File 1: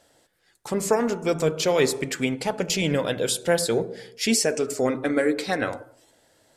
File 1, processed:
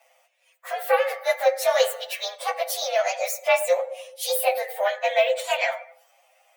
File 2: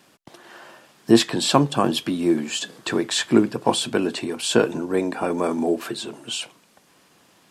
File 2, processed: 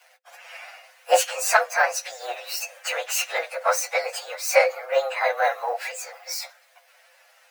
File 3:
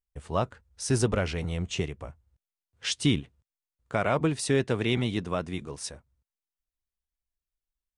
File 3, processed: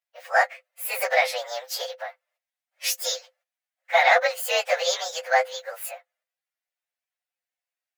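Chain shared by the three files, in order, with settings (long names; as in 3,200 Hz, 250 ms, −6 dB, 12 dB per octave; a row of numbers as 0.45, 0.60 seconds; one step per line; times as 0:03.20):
partials spread apart or drawn together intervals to 123%
harmonic generator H 2 −11 dB, 8 −43 dB, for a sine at −3.5 dBFS
Chebyshev high-pass with heavy ripple 500 Hz, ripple 9 dB
loudness normalisation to −24 LKFS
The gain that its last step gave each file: +11.5, +11.5, +18.0 decibels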